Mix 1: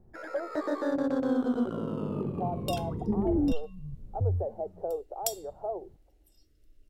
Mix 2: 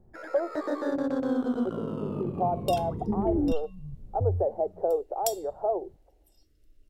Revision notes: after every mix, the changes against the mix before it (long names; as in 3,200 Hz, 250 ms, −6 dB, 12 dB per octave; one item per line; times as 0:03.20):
speech +7.0 dB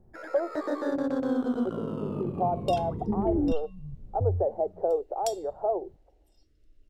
second sound: add high-frequency loss of the air 57 metres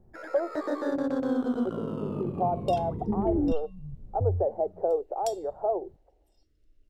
second sound −3.5 dB